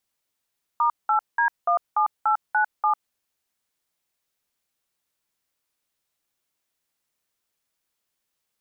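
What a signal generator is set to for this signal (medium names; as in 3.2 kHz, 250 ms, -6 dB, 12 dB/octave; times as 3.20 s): DTMF "*8D17897", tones 100 ms, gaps 191 ms, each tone -20 dBFS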